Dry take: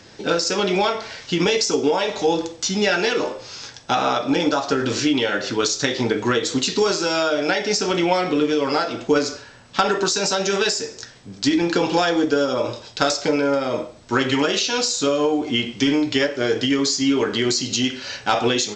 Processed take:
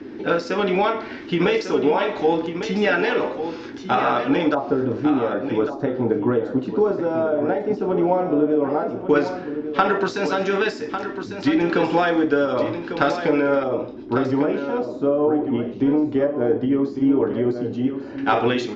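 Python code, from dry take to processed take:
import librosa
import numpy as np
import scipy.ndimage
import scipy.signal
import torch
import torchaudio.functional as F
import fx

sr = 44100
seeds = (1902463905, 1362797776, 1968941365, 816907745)

y = fx.filter_lfo_lowpass(x, sr, shape='square', hz=0.11, low_hz=770.0, high_hz=2100.0, q=0.94)
y = y + 10.0 ** (-9.5 / 20.0) * np.pad(y, (int(1149 * sr / 1000.0), 0))[:len(y)]
y = fx.dmg_noise_band(y, sr, seeds[0], low_hz=230.0, high_hz=390.0, level_db=-36.0)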